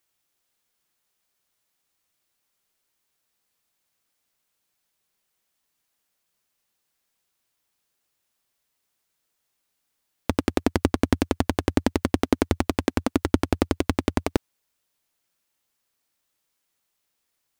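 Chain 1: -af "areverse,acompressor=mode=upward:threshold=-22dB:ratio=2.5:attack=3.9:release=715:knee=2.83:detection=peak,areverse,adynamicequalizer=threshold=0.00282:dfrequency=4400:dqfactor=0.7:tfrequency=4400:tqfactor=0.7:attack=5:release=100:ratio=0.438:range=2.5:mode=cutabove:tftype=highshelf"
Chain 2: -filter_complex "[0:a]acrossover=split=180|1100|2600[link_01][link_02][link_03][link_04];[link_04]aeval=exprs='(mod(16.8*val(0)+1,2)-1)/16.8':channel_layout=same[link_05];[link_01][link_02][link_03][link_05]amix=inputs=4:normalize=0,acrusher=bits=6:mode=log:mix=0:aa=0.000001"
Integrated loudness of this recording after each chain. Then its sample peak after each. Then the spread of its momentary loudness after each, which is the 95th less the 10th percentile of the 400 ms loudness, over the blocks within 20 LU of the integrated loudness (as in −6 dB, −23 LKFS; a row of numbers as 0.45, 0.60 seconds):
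−25.5, −25.5 LKFS; −3.0, −4.0 dBFS; 3, 3 LU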